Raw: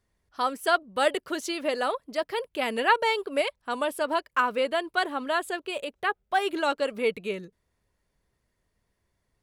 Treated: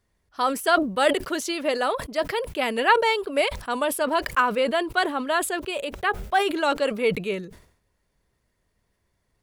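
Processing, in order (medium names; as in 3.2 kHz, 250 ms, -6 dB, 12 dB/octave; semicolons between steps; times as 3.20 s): decay stretcher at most 97 dB/s; trim +3 dB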